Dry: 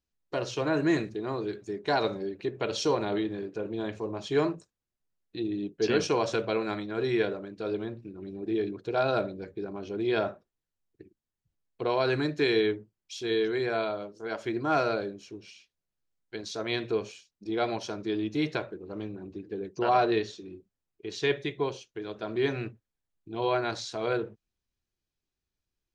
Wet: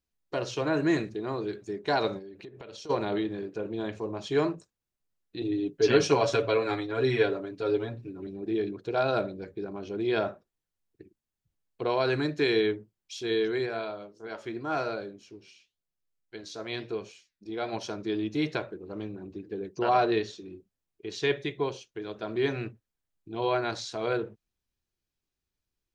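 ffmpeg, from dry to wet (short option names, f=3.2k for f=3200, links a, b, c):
-filter_complex "[0:a]asplit=3[a][b][c];[a]afade=t=out:st=2.18:d=0.02[d];[b]acompressor=threshold=-42dB:ratio=6:attack=3.2:release=140:knee=1:detection=peak,afade=t=in:st=2.18:d=0.02,afade=t=out:st=2.89:d=0.02[e];[c]afade=t=in:st=2.89:d=0.02[f];[d][e][f]amix=inputs=3:normalize=0,asettb=1/sr,asplit=3[g][h][i];[g]atrim=end=5.414[j];[h]atrim=start=5.41:end=8.27,asetpts=PTS-STARTPTS,afade=t=in:d=0.004:c=qsin,afade=t=out:st=2.856:d=0.004:c=qsin,aecho=1:1:7.2:1,atrim=end_sample=126126[k];[i]atrim=start=8.266[l];[j][k]acrossfade=d=0.004:c1=hsin:c2=qsin[m];[m][l]acrossfade=d=0.004:c1=qsin:c2=hsin,asplit=3[n][o][p];[n]afade=t=out:st=13.65:d=0.02[q];[o]flanger=delay=5.3:depth=7.8:regen=80:speed=1:shape=sinusoidal,afade=t=in:st=13.65:d=0.02,afade=t=out:st=17.72:d=0.02[r];[p]afade=t=in:st=17.72:d=0.02[s];[q][r][s]amix=inputs=3:normalize=0"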